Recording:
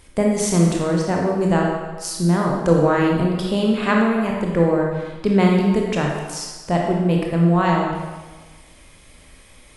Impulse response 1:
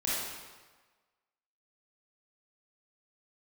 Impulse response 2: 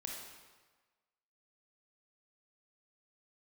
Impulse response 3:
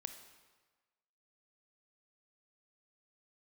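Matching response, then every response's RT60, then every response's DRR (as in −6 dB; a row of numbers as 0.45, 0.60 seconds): 2; 1.3, 1.3, 1.3 seconds; −8.0, −1.0, 8.0 decibels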